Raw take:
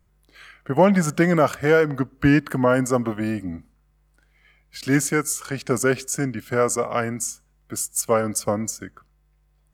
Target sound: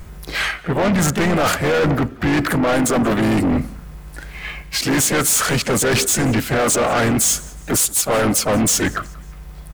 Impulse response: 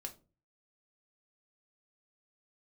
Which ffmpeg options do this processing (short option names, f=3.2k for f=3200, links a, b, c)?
-filter_complex "[0:a]areverse,acompressor=threshold=-30dB:ratio=20,areverse,volume=25dB,asoftclip=hard,volume=-25dB,apsyclip=31.5dB,asplit=4[a][b][c][d];[b]asetrate=22050,aresample=44100,atempo=2,volume=-14dB[e];[c]asetrate=52444,aresample=44100,atempo=0.840896,volume=-7dB[f];[d]asetrate=58866,aresample=44100,atempo=0.749154,volume=-16dB[g];[a][e][f][g]amix=inputs=4:normalize=0,asoftclip=type=tanh:threshold=-9dB,asplit=2[h][i];[i]asplit=3[j][k][l];[j]adelay=181,afreqshift=-46,volume=-23.5dB[m];[k]adelay=362,afreqshift=-92,volume=-30.8dB[n];[l]adelay=543,afreqshift=-138,volume=-38.2dB[o];[m][n][o]amix=inputs=3:normalize=0[p];[h][p]amix=inputs=2:normalize=0,volume=-5dB"